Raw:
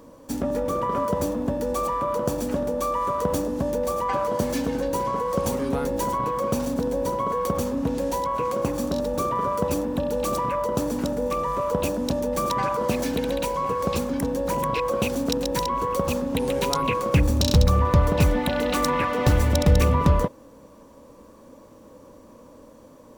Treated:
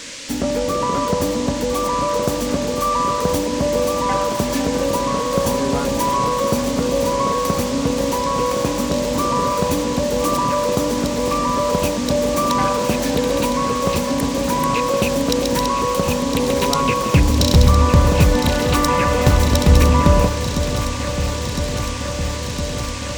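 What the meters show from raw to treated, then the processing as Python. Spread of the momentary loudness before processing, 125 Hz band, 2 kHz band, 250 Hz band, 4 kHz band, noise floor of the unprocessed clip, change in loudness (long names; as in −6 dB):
6 LU, +6.0 dB, +8.0 dB, +6.5 dB, +9.5 dB, −49 dBFS, +6.0 dB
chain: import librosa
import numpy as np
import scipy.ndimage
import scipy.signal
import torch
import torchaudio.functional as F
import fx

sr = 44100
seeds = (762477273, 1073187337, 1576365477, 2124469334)

p1 = fx.dmg_noise_band(x, sr, seeds[0], low_hz=1500.0, high_hz=7700.0, level_db=-39.0)
p2 = p1 + fx.echo_alternate(p1, sr, ms=505, hz=1000.0, feedback_pct=89, wet_db=-9, dry=0)
y = p2 * 10.0 ** (5.0 / 20.0)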